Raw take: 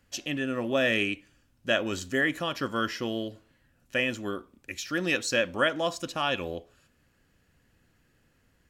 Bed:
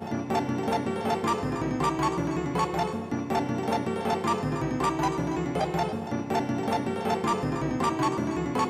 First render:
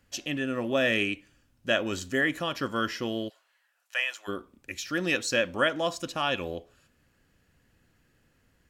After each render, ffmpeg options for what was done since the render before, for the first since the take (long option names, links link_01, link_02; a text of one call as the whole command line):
ffmpeg -i in.wav -filter_complex "[0:a]asplit=3[link_01][link_02][link_03];[link_01]afade=type=out:start_time=3.28:duration=0.02[link_04];[link_02]highpass=frequency=770:width=0.5412,highpass=frequency=770:width=1.3066,afade=type=in:start_time=3.28:duration=0.02,afade=type=out:start_time=4.27:duration=0.02[link_05];[link_03]afade=type=in:start_time=4.27:duration=0.02[link_06];[link_04][link_05][link_06]amix=inputs=3:normalize=0" out.wav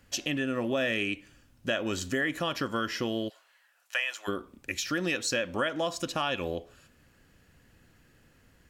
ffmpeg -i in.wav -filter_complex "[0:a]asplit=2[link_01][link_02];[link_02]alimiter=limit=-19.5dB:level=0:latency=1:release=123,volume=-1dB[link_03];[link_01][link_03]amix=inputs=2:normalize=0,acompressor=threshold=-29dB:ratio=2.5" out.wav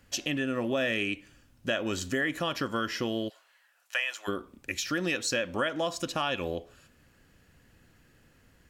ffmpeg -i in.wav -af anull out.wav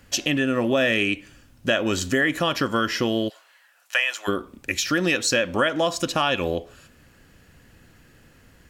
ffmpeg -i in.wav -af "volume=8dB" out.wav